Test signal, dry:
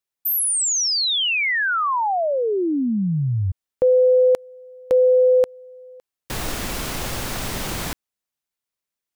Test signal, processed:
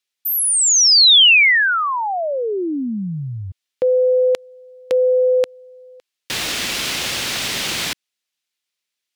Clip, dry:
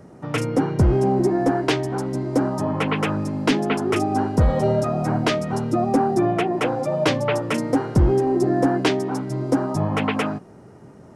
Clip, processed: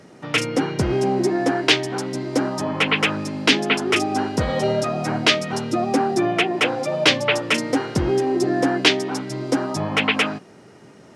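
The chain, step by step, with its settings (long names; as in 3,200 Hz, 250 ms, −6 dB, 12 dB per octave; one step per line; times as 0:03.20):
meter weighting curve D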